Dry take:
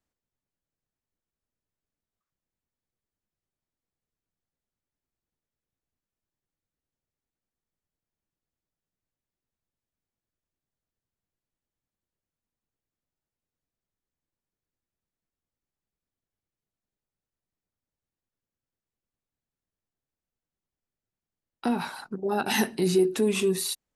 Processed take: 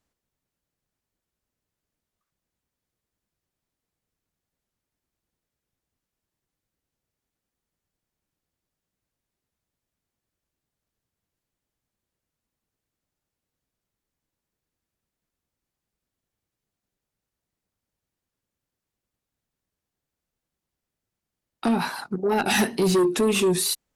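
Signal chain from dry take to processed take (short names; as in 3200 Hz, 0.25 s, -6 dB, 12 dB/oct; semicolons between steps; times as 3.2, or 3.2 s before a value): wow and flutter 74 cents; added harmonics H 5 -13 dB, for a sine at -12 dBFS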